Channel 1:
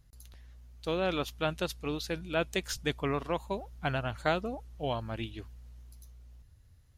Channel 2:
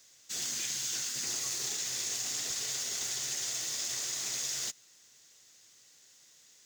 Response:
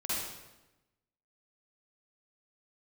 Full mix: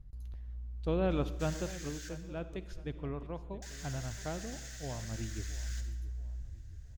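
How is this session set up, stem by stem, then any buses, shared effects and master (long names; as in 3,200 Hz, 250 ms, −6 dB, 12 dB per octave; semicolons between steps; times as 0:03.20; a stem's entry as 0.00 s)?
0:01.32 −5.5 dB → 0:01.90 −14.5 dB → 0:05.06 −14.5 dB → 0:05.67 −2.5 dB, 0.00 s, send −18 dB, echo send −16.5 dB, spectral tilt −3.5 dB per octave
−6.0 dB, 1.10 s, muted 0:02.09–0:03.62, send −21.5 dB, no echo send, high-pass with resonance 1,600 Hz, resonance Q 6.7; automatic ducking −12 dB, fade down 1.80 s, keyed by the first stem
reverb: on, RT60 1.0 s, pre-delay 44 ms
echo: repeating echo 673 ms, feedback 34%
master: no processing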